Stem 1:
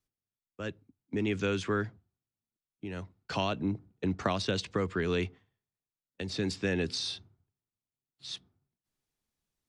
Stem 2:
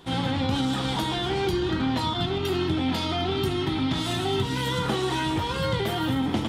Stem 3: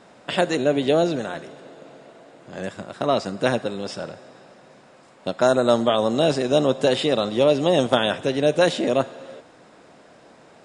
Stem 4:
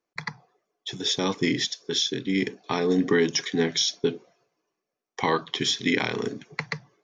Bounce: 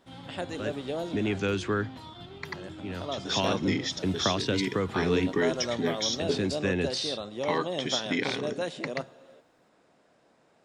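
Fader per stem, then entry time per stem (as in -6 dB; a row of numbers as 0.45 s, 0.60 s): +2.0 dB, -18.5 dB, -14.5 dB, -5.5 dB; 0.00 s, 0.00 s, 0.00 s, 2.25 s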